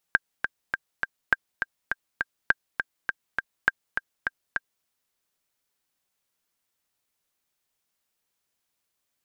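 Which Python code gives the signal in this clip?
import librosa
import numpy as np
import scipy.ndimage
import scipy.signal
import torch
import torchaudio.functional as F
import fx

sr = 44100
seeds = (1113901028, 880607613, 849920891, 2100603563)

y = fx.click_track(sr, bpm=204, beats=4, bars=4, hz=1590.0, accent_db=7.0, level_db=-5.0)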